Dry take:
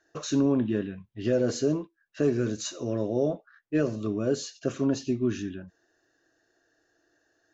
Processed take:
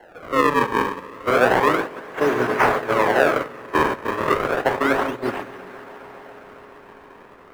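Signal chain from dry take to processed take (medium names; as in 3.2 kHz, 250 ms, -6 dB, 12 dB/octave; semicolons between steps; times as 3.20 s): jump at every zero crossing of -31 dBFS; spectral selection erased 3.02–5.17 s, 1.2–4.4 kHz; in parallel at -3 dB: bit crusher 6-bit; on the sum: high-pass 69 Hz 6 dB/octave; treble shelf 4.5 kHz +9 dB; band-stop 3.5 kHz, Q 8.7; spring tank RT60 3.7 s, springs 48/58 ms, chirp 50 ms, DRR 3 dB; decimation with a swept rate 36×, swing 160% 0.32 Hz; three-band isolator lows -18 dB, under 540 Hz, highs -20 dB, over 2.1 kHz; on a send: echo with a slow build-up 137 ms, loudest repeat 5, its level -16 dB; on the sum: gate -27 dBFS, range -14 dB; trim +8 dB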